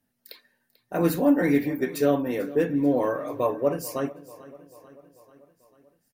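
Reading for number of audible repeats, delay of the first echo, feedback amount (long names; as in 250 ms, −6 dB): 4, 441 ms, 59%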